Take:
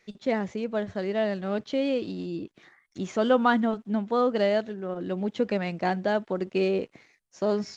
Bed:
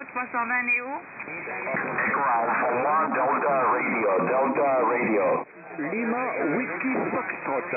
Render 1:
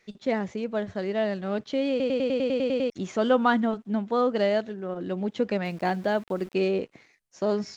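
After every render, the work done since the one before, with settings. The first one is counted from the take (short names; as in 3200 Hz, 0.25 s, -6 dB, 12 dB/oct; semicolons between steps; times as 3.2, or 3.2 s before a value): 1.9 stutter in place 0.10 s, 10 plays; 5.65–6.54 sample gate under -45.5 dBFS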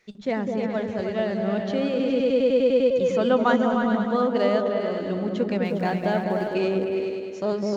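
repeats that get brighter 0.102 s, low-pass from 200 Hz, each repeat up 2 oct, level 0 dB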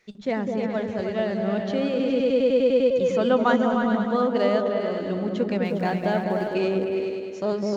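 nothing audible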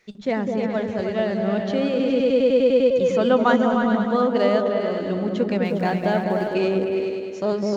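gain +2.5 dB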